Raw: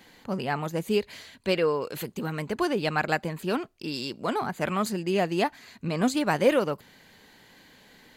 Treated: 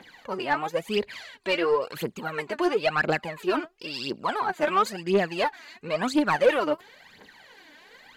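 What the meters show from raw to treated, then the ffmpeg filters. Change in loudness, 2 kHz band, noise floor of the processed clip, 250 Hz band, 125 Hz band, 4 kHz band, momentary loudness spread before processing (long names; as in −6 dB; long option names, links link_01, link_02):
+1.5 dB, +3.5 dB, −54 dBFS, −1.5 dB, −6.0 dB, +1.5 dB, 10 LU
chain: -filter_complex "[0:a]aphaser=in_gain=1:out_gain=1:delay=3.5:decay=0.73:speed=0.97:type=triangular,asplit=2[link_01][link_02];[link_02]highpass=frequency=720:poles=1,volume=18dB,asoftclip=type=tanh:threshold=-1.5dB[link_03];[link_01][link_03]amix=inputs=2:normalize=0,lowpass=frequency=2200:poles=1,volume=-6dB,volume=-8dB"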